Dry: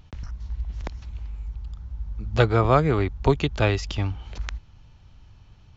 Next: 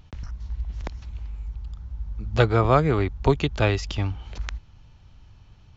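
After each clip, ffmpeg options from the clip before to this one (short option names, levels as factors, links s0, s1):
-af anull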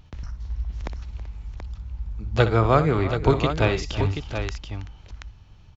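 -af "aecho=1:1:62|325|383|730:0.251|0.15|0.119|0.398"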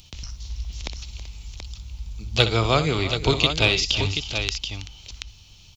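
-filter_complex "[0:a]acrossover=split=5200[s0][s1];[s1]acompressor=threshold=0.00112:ratio=4:attack=1:release=60[s2];[s0][s2]amix=inputs=2:normalize=0,aexciter=amount=7.3:drive=6.7:freq=2500,volume=0.75"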